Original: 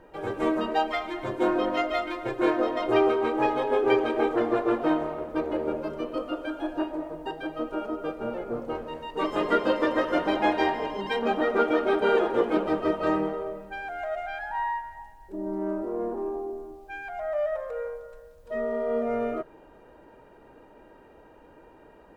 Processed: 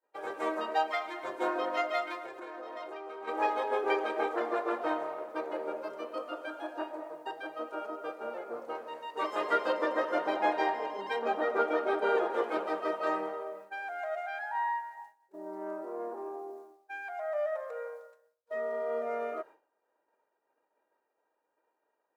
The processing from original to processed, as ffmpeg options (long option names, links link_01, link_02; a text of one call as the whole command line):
ffmpeg -i in.wav -filter_complex "[0:a]asplit=3[link_01][link_02][link_03];[link_01]afade=type=out:start_time=2.18:duration=0.02[link_04];[link_02]acompressor=threshold=-32dB:ratio=12:attack=3.2:release=140:knee=1:detection=peak,afade=type=in:start_time=2.18:duration=0.02,afade=type=out:start_time=3.27:duration=0.02[link_05];[link_03]afade=type=in:start_time=3.27:duration=0.02[link_06];[link_04][link_05][link_06]amix=inputs=3:normalize=0,asettb=1/sr,asplit=3[link_07][link_08][link_09];[link_07]atrim=end=9.724[link_10];[link_08]atrim=start=9.72:end=12.32,asetpts=PTS-STARTPTS,afade=type=in:duration=0.004:curve=qsin,afade=type=out:start_time=2.596:duration=0.004:curve=qsin,tiltshelf=frequency=800:gain=3.5[link_11];[link_09]atrim=start=12.316[link_12];[link_10][link_11]acrossfade=duration=0.004:curve1=hsin:curve2=qsin[link_13];[link_13][link_12]acrossfade=duration=0.004:curve1=qsin:curve2=hsin,highpass=580,equalizer=frequency=3000:width=2.5:gain=-4.5,agate=range=-33dB:threshold=-43dB:ratio=3:detection=peak,volume=-2dB" out.wav